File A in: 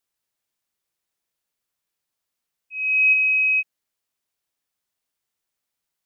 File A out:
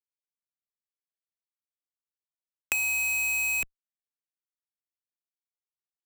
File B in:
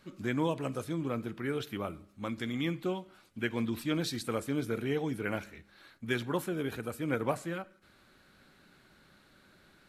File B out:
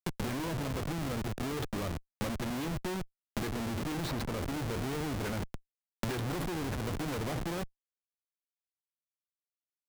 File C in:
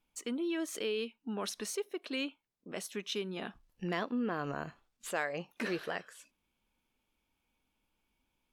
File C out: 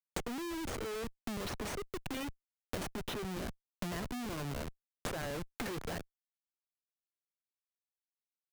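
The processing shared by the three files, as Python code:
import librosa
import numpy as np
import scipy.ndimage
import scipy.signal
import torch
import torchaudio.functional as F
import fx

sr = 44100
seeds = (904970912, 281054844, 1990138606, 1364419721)

y = fx.low_shelf(x, sr, hz=78.0, db=10.5)
y = fx.schmitt(y, sr, flips_db=-39.0)
y = fx.band_squash(y, sr, depth_pct=100)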